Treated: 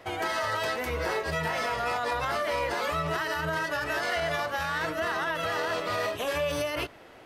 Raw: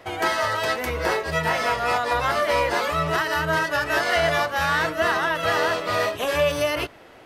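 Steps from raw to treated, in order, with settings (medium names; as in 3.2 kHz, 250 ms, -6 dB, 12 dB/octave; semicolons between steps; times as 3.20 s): peak limiter -17.5 dBFS, peak gain reduction 7.5 dB; trim -3 dB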